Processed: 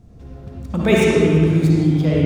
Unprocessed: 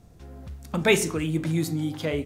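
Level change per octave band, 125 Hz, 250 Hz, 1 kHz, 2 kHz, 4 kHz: +12.5, +11.0, +5.5, +3.5, +2.0 decibels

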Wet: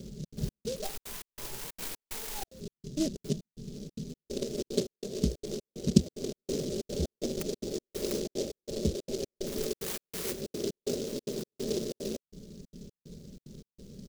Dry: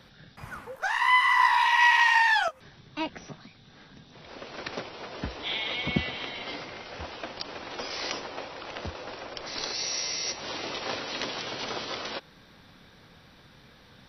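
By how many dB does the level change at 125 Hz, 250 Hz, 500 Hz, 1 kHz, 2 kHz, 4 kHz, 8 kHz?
+6.5, +7.0, +4.5, −25.0, −26.0, −10.5, −0.5 decibels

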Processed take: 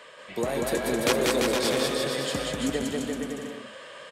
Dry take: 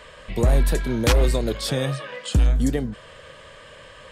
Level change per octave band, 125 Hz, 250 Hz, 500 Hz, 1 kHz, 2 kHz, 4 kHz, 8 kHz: −15.5, −2.5, +0.5, +1.0, +1.0, +1.5, +1.5 decibels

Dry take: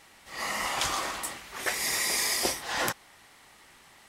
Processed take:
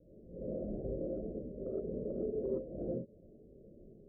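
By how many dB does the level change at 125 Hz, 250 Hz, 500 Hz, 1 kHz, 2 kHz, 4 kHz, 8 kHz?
+3.5 dB, +3.5 dB, +2.0 dB, below −25 dB, below −40 dB, below −40 dB, below −40 dB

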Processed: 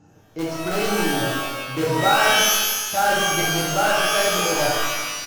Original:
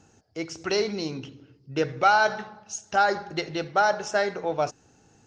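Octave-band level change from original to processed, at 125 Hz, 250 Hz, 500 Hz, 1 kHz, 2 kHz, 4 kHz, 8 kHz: +9.0, +7.0, +4.0, +3.5, +7.0, +13.5, +16.5 decibels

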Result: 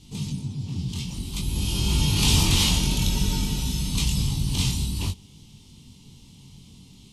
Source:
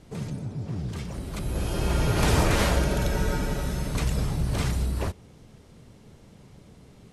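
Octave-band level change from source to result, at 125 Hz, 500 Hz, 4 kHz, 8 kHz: +2.0, −10.0, +10.5, +8.5 decibels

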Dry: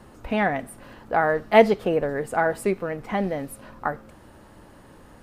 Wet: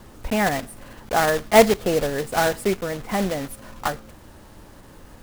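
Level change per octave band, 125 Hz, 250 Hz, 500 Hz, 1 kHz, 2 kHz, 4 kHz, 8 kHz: +2.5, +1.5, +1.0, +1.0, +1.5, +9.0, +13.0 decibels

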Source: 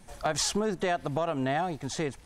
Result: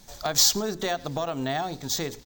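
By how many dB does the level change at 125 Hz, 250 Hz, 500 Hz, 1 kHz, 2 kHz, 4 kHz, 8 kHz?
−0.5, −0.5, −0.5, 0.0, 0.0, +9.5, +9.0 decibels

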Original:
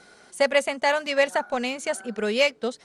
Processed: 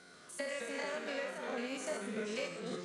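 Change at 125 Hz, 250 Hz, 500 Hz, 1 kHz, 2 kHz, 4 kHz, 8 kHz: can't be measured, −10.5 dB, −16.0 dB, −17.5 dB, −15.5 dB, −16.5 dB, −10.5 dB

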